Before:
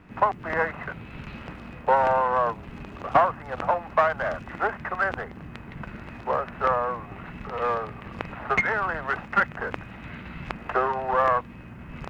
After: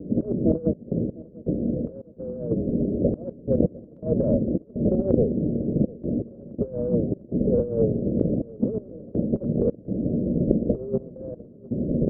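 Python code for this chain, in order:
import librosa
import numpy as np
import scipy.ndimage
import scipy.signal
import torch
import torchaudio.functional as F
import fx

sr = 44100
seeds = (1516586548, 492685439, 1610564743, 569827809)

p1 = fx.envelope_flatten(x, sr, power=0.3)
p2 = scipy.signal.sosfilt(scipy.signal.butter(12, 580.0, 'lowpass', fs=sr, output='sos'), p1)
p3 = fx.peak_eq(p2, sr, hz=270.0, db=10.5, octaves=2.2)
p4 = fx.over_compress(p3, sr, threshold_db=-30.0, ratio=-0.5)
p5 = fx.step_gate(p4, sr, bpm=82, pattern='xxxx.x..xxx.xx', floor_db=-24.0, edge_ms=4.5)
p6 = p5 + fx.echo_feedback(p5, sr, ms=702, feedback_pct=53, wet_db=-21.0, dry=0)
y = F.gain(torch.from_numpy(p6), 8.5).numpy()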